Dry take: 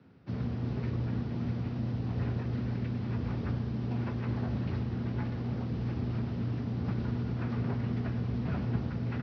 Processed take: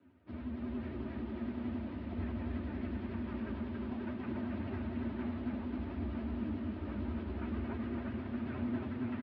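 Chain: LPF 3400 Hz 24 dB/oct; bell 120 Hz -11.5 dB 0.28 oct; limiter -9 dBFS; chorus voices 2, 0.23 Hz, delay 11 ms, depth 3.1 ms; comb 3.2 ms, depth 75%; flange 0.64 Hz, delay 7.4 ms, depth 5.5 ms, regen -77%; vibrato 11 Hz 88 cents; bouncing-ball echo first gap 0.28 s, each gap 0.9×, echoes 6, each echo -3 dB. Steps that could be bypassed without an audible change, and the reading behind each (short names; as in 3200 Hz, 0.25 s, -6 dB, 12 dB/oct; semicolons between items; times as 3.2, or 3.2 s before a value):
limiter -9 dBFS: input peak -21.5 dBFS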